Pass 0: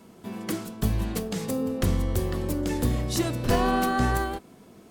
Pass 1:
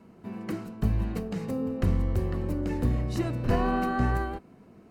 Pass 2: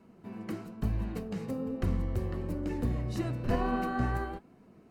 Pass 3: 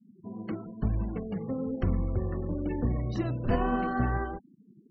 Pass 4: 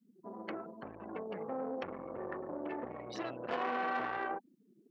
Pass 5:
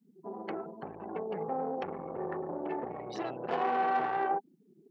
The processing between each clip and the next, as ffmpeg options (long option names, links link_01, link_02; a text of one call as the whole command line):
ffmpeg -i in.wav -af "bass=frequency=250:gain=4,treble=frequency=4000:gain=-13,bandreject=frequency=3400:width=6.7,volume=-4dB" out.wav
ffmpeg -i in.wav -af "flanger=delay=2.4:depth=7.6:regen=70:speed=1.1:shape=triangular" out.wav
ffmpeg -i in.wav -af "afftfilt=real='re*gte(hypot(re,im),0.00708)':imag='im*gte(hypot(re,im),0.00708)':win_size=1024:overlap=0.75,volume=2.5dB" out.wav
ffmpeg -i in.wav -af "aeval=exprs='(tanh(25.1*val(0)+0.7)-tanh(0.7))/25.1':channel_layout=same,alimiter=level_in=6.5dB:limit=-24dB:level=0:latency=1:release=32,volume=-6.5dB,highpass=500,volume=8dB" out.wav
ffmpeg -i in.wav -af "equalizer=frequency=160:width_type=o:width=0.33:gain=11,equalizer=frequency=400:width_type=o:width=0.33:gain=9,equalizer=frequency=800:width_type=o:width=0.33:gain=10" out.wav